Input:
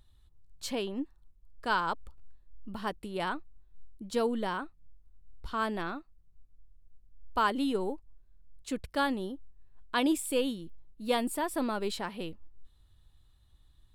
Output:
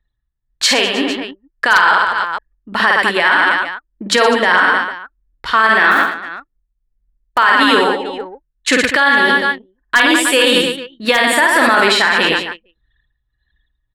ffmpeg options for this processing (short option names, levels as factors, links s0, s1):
-filter_complex "[0:a]bandpass=f=2300:t=q:w=0.52:csg=0,asettb=1/sr,asplit=3[s0][s1][s2];[s0]atrim=end=5.914[s3];[s1]atrim=start=5.91:end=7.38,asetpts=PTS-STARTPTS,afade=t=in:d=0.004:c=qsin,afade=t=out:st=1.466:d=0.004:c=qsin,acrusher=bits=4:mode=log:mix=0:aa=0.000001[s4];[s2]atrim=start=7.376[s5];[s3][s4]acrossfade=d=0.004:c1=hsin:c2=qsin[s6];[s6][s5]acrossfade=d=0.004:c1=qsin:c2=hsin,equalizer=f=1800:t=o:w=0.5:g=11,asplit=2[s7][s8];[s8]aecho=0:1:50|115|199.5|309.4|452.2:0.631|0.398|0.251|0.158|0.1[s9];[s7][s9]amix=inputs=2:normalize=0,tremolo=f=1.7:d=0.57,aeval=exprs='0.141*(abs(mod(val(0)/0.141+3,4)-2)-1)':c=same,dynaudnorm=f=320:g=3:m=1.68,anlmdn=0.000251,alimiter=level_in=23.7:limit=0.891:release=50:level=0:latency=1,volume=0.891"